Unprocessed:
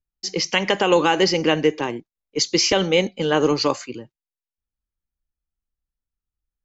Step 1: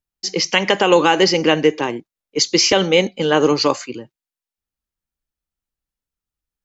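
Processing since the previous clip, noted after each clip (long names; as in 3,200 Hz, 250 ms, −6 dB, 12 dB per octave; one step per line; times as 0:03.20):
low-shelf EQ 77 Hz −10.5 dB
level +4 dB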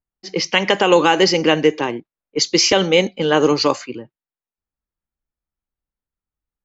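low-pass that shuts in the quiet parts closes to 1,600 Hz, open at −10 dBFS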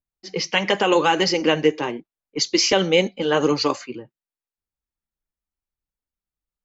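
flanger 0.86 Hz, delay 0.4 ms, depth 6.5 ms, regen −44%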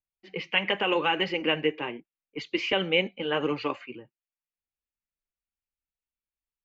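high shelf with overshoot 3,900 Hz −13.5 dB, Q 3
level −9 dB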